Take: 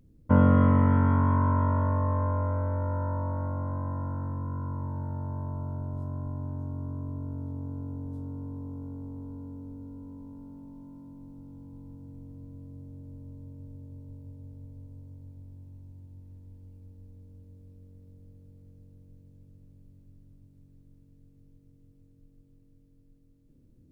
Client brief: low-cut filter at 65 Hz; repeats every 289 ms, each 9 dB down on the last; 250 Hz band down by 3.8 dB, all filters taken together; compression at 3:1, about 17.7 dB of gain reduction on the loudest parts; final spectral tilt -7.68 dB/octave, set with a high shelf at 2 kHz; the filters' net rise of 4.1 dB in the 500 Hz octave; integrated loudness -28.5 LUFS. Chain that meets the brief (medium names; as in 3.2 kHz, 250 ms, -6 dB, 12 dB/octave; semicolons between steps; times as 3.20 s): high-pass 65 Hz; peaking EQ 250 Hz -5.5 dB; peaking EQ 500 Hz +5.5 dB; treble shelf 2 kHz +4 dB; compression 3:1, threshold -42 dBFS; feedback delay 289 ms, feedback 35%, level -9 dB; trim +16 dB